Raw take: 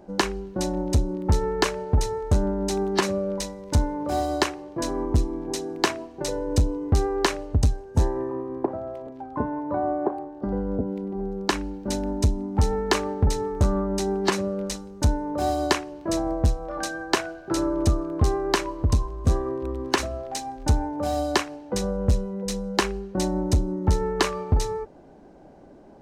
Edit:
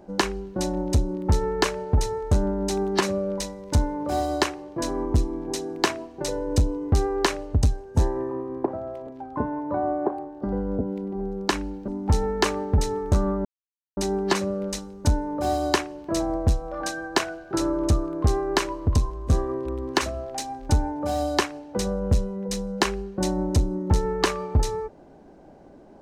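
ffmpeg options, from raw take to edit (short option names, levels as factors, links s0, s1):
-filter_complex "[0:a]asplit=3[s0][s1][s2];[s0]atrim=end=11.882[s3];[s1]atrim=start=12.368:end=13.94,asetpts=PTS-STARTPTS,afade=t=out:st=1.568:d=0.004:c=hsin,apad=pad_dur=0.52[s4];[s2]atrim=start=13.94,asetpts=PTS-STARTPTS,afade=t=in:d=0.004:c=hsin[s5];[s4][s5]concat=n=2:v=0:a=1[s6];[s3][s6]acrossfade=d=0.004:c1=hsin:c2=hsin"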